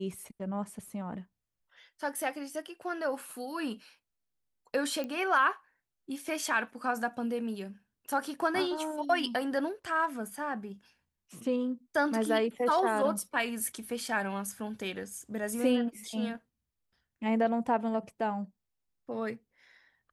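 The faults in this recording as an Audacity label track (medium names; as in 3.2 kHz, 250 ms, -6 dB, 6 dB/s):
5.040000	5.040000	pop -24 dBFS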